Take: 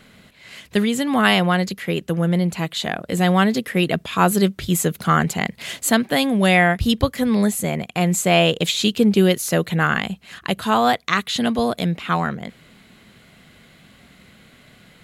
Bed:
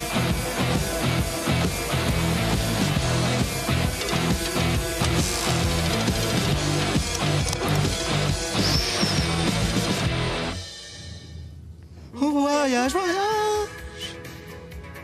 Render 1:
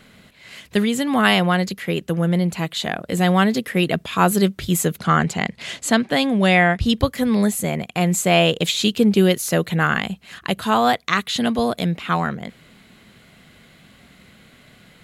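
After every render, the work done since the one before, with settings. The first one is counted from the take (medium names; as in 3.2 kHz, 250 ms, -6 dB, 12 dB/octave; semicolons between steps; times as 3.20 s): 4.98–6.93 s: low-pass 7.7 kHz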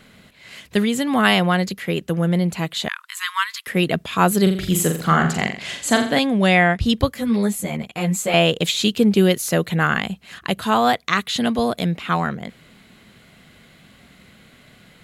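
2.88–3.67 s: brick-wall FIR high-pass 930 Hz; 4.42–6.19 s: flutter echo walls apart 7.3 m, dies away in 0.47 s; 7.14–8.34 s: three-phase chorus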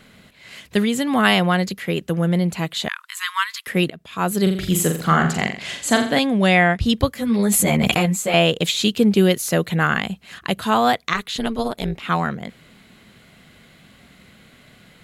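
3.90–4.58 s: fade in, from -24 dB; 7.39–8.06 s: level flattener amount 100%; 11.13–12.03 s: AM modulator 220 Hz, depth 65%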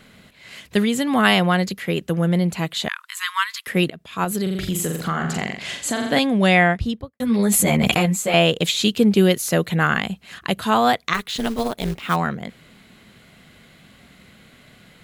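4.24–6.10 s: compression, threshold -19 dBFS; 6.62–7.20 s: studio fade out; 11.14–12.16 s: short-mantissa float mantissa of 2-bit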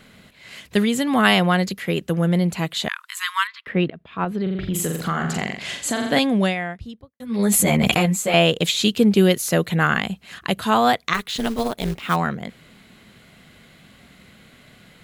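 3.47–4.74 s: distance through air 360 m; 6.39–7.44 s: dip -12 dB, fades 0.16 s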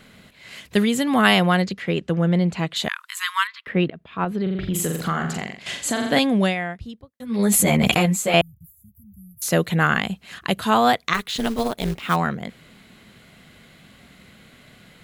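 1.62–2.76 s: distance through air 84 m; 5.13–5.66 s: fade out, to -10.5 dB; 8.41–9.42 s: inverse Chebyshev band-stop 380–5000 Hz, stop band 70 dB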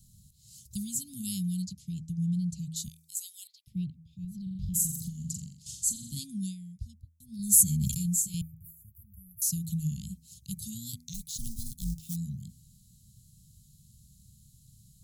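inverse Chebyshev band-stop 470–1800 Hz, stop band 70 dB; de-hum 80.99 Hz, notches 30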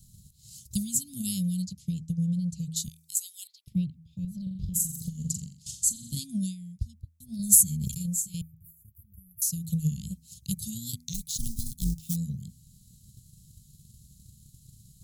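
gain riding within 3 dB 0.5 s; transient shaper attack +5 dB, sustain -2 dB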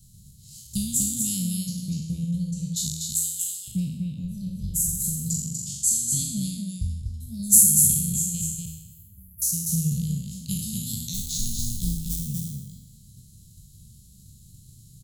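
spectral sustain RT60 0.95 s; delay 243 ms -4 dB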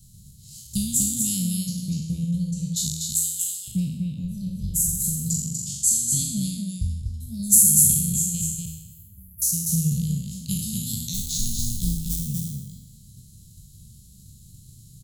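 trim +2 dB; peak limiter -3 dBFS, peak gain reduction 3 dB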